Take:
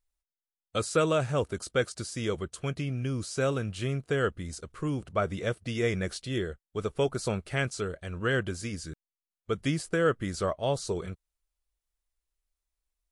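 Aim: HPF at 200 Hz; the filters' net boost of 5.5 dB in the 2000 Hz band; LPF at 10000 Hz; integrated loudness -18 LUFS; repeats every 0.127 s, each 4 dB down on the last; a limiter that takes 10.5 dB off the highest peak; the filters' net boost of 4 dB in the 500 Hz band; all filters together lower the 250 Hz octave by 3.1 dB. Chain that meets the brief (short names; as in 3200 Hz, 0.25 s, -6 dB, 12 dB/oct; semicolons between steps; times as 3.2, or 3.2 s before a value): HPF 200 Hz; LPF 10000 Hz; bell 250 Hz -4.5 dB; bell 500 Hz +5.5 dB; bell 2000 Hz +7 dB; limiter -19 dBFS; feedback echo 0.127 s, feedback 63%, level -4 dB; gain +12 dB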